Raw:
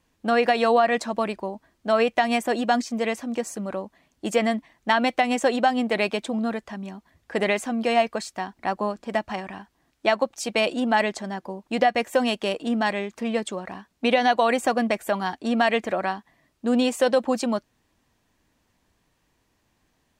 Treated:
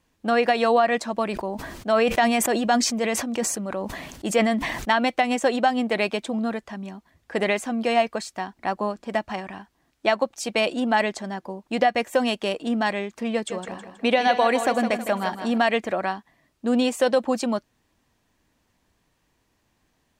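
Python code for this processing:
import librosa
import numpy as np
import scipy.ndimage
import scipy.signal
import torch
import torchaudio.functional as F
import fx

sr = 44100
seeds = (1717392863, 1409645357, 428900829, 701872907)

y = fx.sustainer(x, sr, db_per_s=41.0, at=(1.27, 4.91))
y = fx.echo_feedback(y, sr, ms=160, feedback_pct=42, wet_db=-9, at=(13.34, 15.58))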